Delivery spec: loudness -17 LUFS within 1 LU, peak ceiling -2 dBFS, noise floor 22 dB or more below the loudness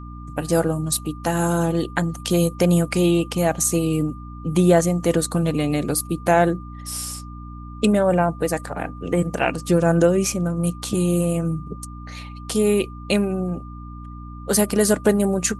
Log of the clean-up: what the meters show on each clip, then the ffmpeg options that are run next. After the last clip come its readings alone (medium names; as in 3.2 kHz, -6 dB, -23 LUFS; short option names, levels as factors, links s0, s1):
hum 60 Hz; highest harmonic 300 Hz; hum level -34 dBFS; steady tone 1.2 kHz; tone level -42 dBFS; loudness -21.0 LUFS; peak level -4.5 dBFS; loudness target -17.0 LUFS
-> -af "bandreject=f=60:t=h:w=4,bandreject=f=120:t=h:w=4,bandreject=f=180:t=h:w=4,bandreject=f=240:t=h:w=4,bandreject=f=300:t=h:w=4"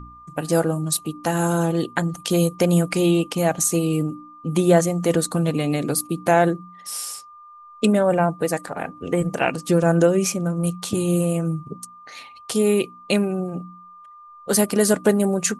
hum not found; steady tone 1.2 kHz; tone level -42 dBFS
-> -af "bandreject=f=1200:w=30"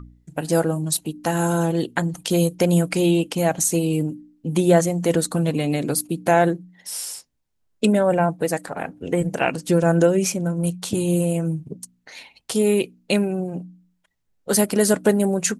steady tone not found; loudness -21.5 LUFS; peak level -5.0 dBFS; loudness target -17.0 LUFS
-> -af "volume=1.68,alimiter=limit=0.794:level=0:latency=1"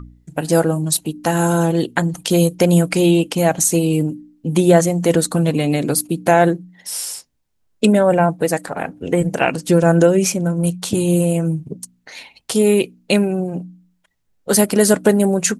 loudness -17.0 LUFS; peak level -2.0 dBFS; noise floor -65 dBFS